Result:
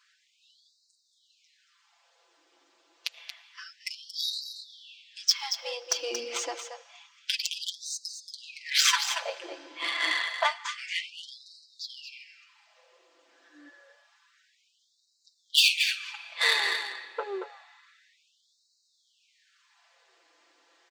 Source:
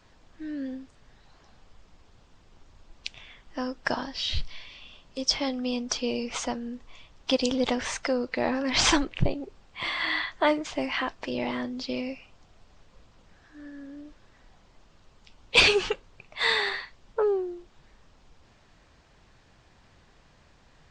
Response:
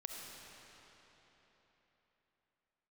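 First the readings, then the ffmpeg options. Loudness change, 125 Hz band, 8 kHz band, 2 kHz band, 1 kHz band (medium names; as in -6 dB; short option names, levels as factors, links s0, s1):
-1.0 dB, under -40 dB, +2.5 dB, -1.5 dB, -3.5 dB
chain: -filter_complex "[0:a]tiltshelf=f=1200:g=-3,aecho=1:1:5.9:0.87,asplit=2[s0][s1];[s1]alimiter=limit=0.224:level=0:latency=1:release=248,volume=1[s2];[s0][s2]amix=inputs=2:normalize=0,aeval=exprs='1.06*(cos(1*acos(clip(val(0)/1.06,-1,1)))-cos(1*PI/2))+0.335*(cos(3*acos(clip(val(0)/1.06,-1,1)))-cos(3*PI/2))+0.0133*(cos(5*acos(clip(val(0)/1.06,-1,1)))-cos(5*PI/2))':c=same,acontrast=83,asoftclip=type=tanh:threshold=0.376,aecho=1:1:229:0.376,asplit=2[s3][s4];[1:a]atrim=start_sample=2205,highshelf=f=7000:g=-5.5,adelay=11[s5];[s4][s5]afir=irnorm=-1:irlink=0,volume=0.237[s6];[s3][s6]amix=inputs=2:normalize=0,afftfilt=real='re*gte(b*sr/1024,250*pow(3800/250,0.5+0.5*sin(2*PI*0.28*pts/sr)))':imag='im*gte(b*sr/1024,250*pow(3800/250,0.5+0.5*sin(2*PI*0.28*pts/sr)))':win_size=1024:overlap=0.75"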